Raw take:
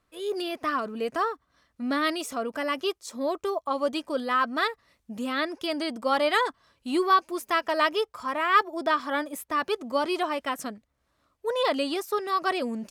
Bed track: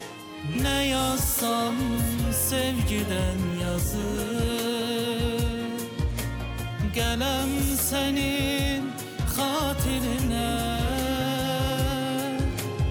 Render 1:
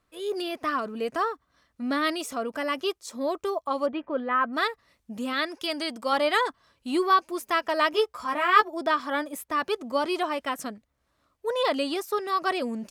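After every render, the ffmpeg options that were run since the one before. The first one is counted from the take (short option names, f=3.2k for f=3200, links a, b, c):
-filter_complex "[0:a]asplit=3[a][b][c];[a]afade=t=out:st=3.85:d=0.02[d];[b]lowpass=f=2.4k:w=0.5412,lowpass=f=2.4k:w=1.3066,afade=t=in:st=3.85:d=0.02,afade=t=out:st=4.52:d=0.02[e];[c]afade=t=in:st=4.52:d=0.02[f];[d][e][f]amix=inputs=3:normalize=0,asettb=1/sr,asplit=3[g][h][i];[g]atrim=end=5.334[j];[h]atrim=start=5.33:end=6.13,asetpts=PTS-STARTPTS,afade=t=in:d=0.004:c=qsin,afade=t=out:st=0.796:d=0.004:c=qsin,tiltshelf=f=1.2k:g=-3.5[k];[i]atrim=start=6.126[l];[j][k]acrossfade=d=0.004:c1=hsin:c2=qsin[m];[m][l]acrossfade=d=0.004:c1=qsin:c2=hsin,asettb=1/sr,asplit=3[n][o][p];[n]atrim=end=7.924[q];[o]atrim=start=7.92:end=8.68,asetpts=PTS-STARTPTS,afade=t=in:d=0.004:c=qsin,afade=t=out:st=0.756:d=0.004:c=qsin,asplit=2[r][s];[s]adelay=14,volume=-3dB[t];[r][t]amix=inputs=2:normalize=0,atrim=end_sample=33516[u];[p]atrim=start=8.676[v];[q][u]acrossfade=d=0.004:c1=hsin:c2=qsin[w];[w][v]acrossfade=d=0.004:c1=qsin:c2=hsin"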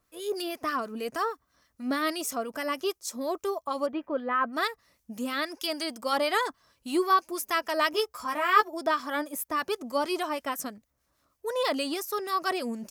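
-filter_complex "[0:a]aexciter=amount=1.7:drive=7.8:freq=5.1k,acrossover=split=1300[a][b];[a]aeval=exprs='val(0)*(1-0.5/2+0.5/2*cos(2*PI*6.3*n/s))':c=same[c];[b]aeval=exprs='val(0)*(1-0.5/2-0.5/2*cos(2*PI*6.3*n/s))':c=same[d];[c][d]amix=inputs=2:normalize=0"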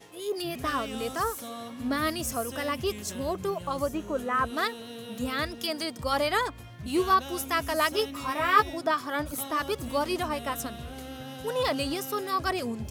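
-filter_complex "[1:a]volume=-14dB[a];[0:a][a]amix=inputs=2:normalize=0"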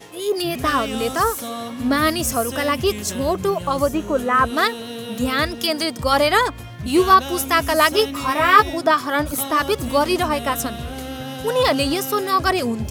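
-af "volume=10dB,alimiter=limit=-1dB:level=0:latency=1"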